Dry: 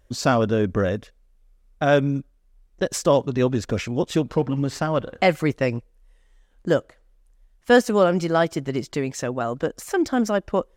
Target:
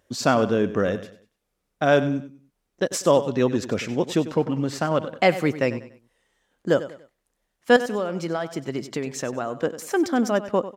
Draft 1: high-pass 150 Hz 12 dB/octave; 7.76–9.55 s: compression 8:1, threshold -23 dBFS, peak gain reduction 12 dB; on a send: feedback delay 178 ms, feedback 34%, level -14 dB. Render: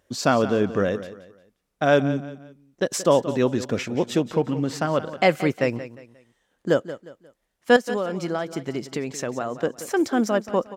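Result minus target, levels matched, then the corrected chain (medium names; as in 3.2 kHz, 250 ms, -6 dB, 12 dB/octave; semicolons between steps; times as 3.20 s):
echo 82 ms late
high-pass 150 Hz 12 dB/octave; 7.76–9.55 s: compression 8:1, threshold -23 dBFS, peak gain reduction 12 dB; on a send: feedback delay 96 ms, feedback 34%, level -14 dB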